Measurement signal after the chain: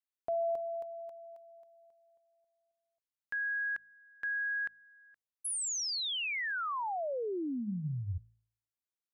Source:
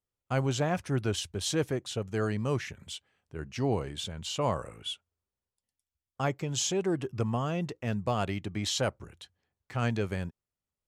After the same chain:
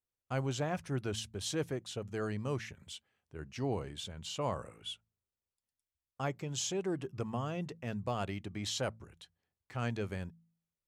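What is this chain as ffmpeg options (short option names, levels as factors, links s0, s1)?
-af "bandreject=f=55.45:t=h:w=4,bandreject=f=110.9:t=h:w=4,bandreject=f=166.35:t=h:w=4,bandreject=f=221.8:t=h:w=4,volume=0.501"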